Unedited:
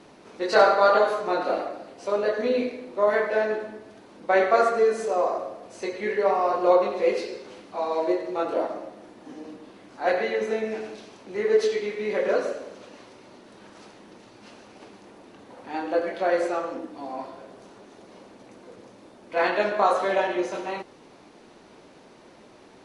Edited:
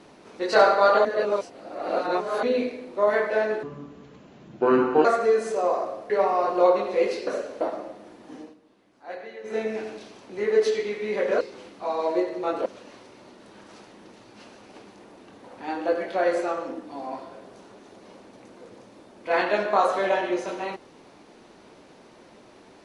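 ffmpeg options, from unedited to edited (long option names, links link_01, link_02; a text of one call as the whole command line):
ffmpeg -i in.wav -filter_complex "[0:a]asplit=12[link_01][link_02][link_03][link_04][link_05][link_06][link_07][link_08][link_09][link_10][link_11][link_12];[link_01]atrim=end=1.052[link_13];[link_02]atrim=start=1.048:end=2.432,asetpts=PTS-STARTPTS,areverse[link_14];[link_03]atrim=start=2.428:end=3.634[link_15];[link_04]atrim=start=3.63:end=4.58,asetpts=PTS-STARTPTS,asetrate=29547,aresample=44100[link_16];[link_05]atrim=start=4.576:end=5.632[link_17];[link_06]atrim=start=6.158:end=7.332[link_18];[link_07]atrim=start=12.378:end=12.722[link_19];[link_08]atrim=start=8.578:end=9.52,asetpts=PTS-STARTPTS,afade=type=out:start_time=0.792:duration=0.15:silence=0.199526[link_20];[link_09]atrim=start=9.52:end=10.41,asetpts=PTS-STARTPTS,volume=-14dB[link_21];[link_10]atrim=start=10.41:end=12.382,asetpts=PTS-STARTPTS,afade=type=in:duration=0.15:silence=0.199526[link_22];[link_11]atrim=start=7.328:end=8.582[link_23];[link_12]atrim=start=12.718[link_24];[link_13][link_14]acrossfade=duration=0.004:curve1=hsin:curve2=hsin[link_25];[link_25][link_15]acrossfade=duration=0.004:curve1=hsin:curve2=hsin[link_26];[link_26][link_16]acrossfade=duration=0.004:curve1=hsin:curve2=hsin[link_27];[link_27][link_17]acrossfade=duration=0.004:curve1=hsin:curve2=hsin[link_28];[link_28][link_18]acrossfade=duration=0.004:curve1=hsin:curve2=hsin[link_29];[link_29][link_19]acrossfade=duration=0.004:curve1=hsin:curve2=hsin[link_30];[link_20][link_21][link_22]concat=n=3:v=0:a=1[link_31];[link_30][link_31]acrossfade=duration=0.004:curve1=hsin:curve2=hsin[link_32];[link_32][link_23]acrossfade=duration=0.004:curve1=hsin:curve2=hsin[link_33];[link_33][link_24]acrossfade=duration=0.004:curve1=hsin:curve2=hsin" out.wav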